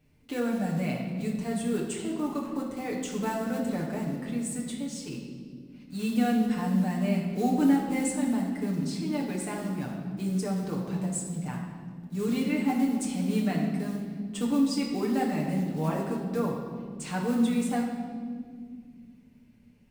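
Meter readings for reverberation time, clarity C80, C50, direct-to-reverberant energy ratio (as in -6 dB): not exponential, 5.0 dB, 3.5 dB, -3.0 dB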